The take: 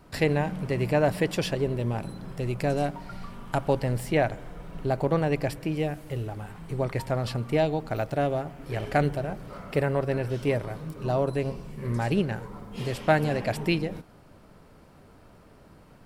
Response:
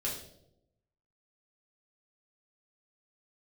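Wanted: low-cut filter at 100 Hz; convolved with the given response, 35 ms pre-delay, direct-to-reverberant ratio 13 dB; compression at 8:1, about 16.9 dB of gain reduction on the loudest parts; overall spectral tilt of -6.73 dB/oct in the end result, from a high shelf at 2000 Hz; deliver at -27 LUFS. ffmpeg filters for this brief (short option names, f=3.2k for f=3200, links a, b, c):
-filter_complex "[0:a]highpass=100,highshelf=f=2k:g=-6.5,acompressor=threshold=-36dB:ratio=8,asplit=2[a][b];[1:a]atrim=start_sample=2205,adelay=35[c];[b][c]afir=irnorm=-1:irlink=0,volume=-16.5dB[d];[a][d]amix=inputs=2:normalize=0,volume=14dB"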